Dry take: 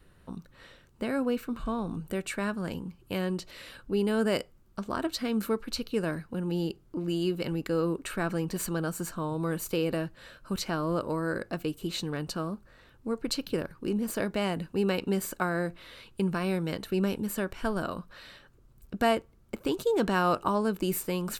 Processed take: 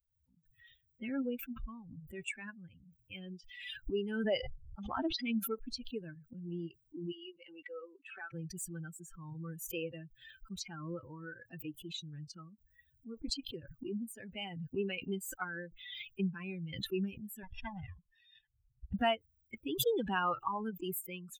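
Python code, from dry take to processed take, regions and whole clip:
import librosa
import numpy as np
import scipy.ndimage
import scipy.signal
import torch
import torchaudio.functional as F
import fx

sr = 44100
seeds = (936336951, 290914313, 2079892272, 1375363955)

y = fx.chain(x, sr, fx.lowpass(hz=5500.0, slope=24),
    fx.peak_eq(hz=740.0, db=6.5, octaves=0.75),
    fx.sustainer(db_per_s=62.0), at=(4.27, 5.17))
y = fx.chain(y, sr, fx.highpass(hz=480.0, slope=12),
    fx.air_absorb(metres=89.0), at=(7.12, 8.34))
y = fx.chain(y, sr, fx.lower_of_two(delay_ms=1.1),
    fx.steep_lowpass(hz=5900.0, slope=72), at=(17.43, 18.94))
y = fx.bin_expand(y, sr, power=3.0)
y = fx.peak_eq(y, sr, hz=2700.0, db=6.0, octaves=0.62)
y = fx.pre_swell(y, sr, db_per_s=49.0)
y = y * librosa.db_to_amplitude(-2.5)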